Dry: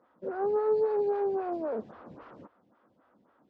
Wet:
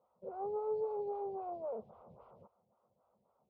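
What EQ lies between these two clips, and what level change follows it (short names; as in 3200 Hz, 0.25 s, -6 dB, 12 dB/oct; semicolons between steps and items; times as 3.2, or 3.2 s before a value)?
LPF 1100 Hz 6 dB/oct; fixed phaser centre 710 Hz, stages 4; -4.5 dB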